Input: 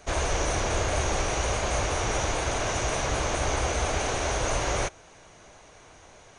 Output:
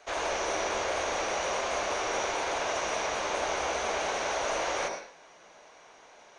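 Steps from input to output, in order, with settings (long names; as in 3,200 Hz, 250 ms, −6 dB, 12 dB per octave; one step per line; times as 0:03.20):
three-way crossover with the lows and the highs turned down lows −21 dB, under 380 Hz, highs −13 dB, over 5,900 Hz
on a send: convolution reverb, pre-delay 76 ms, DRR 5 dB
on the sum: level −2 dB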